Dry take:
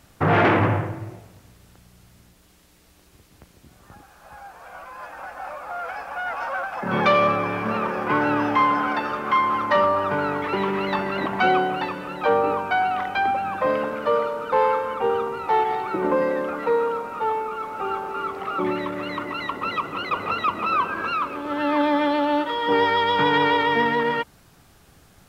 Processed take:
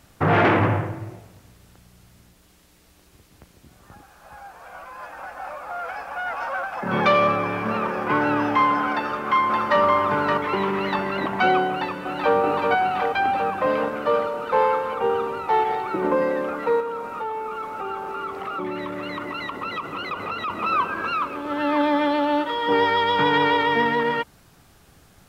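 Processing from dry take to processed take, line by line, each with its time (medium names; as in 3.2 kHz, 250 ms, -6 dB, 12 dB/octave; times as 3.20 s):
8.92–9.80 s: echo throw 570 ms, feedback 35%, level -4 dB
11.67–12.36 s: echo throw 380 ms, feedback 80%, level -4.5 dB
16.80–20.50 s: compression 3:1, threshold -26 dBFS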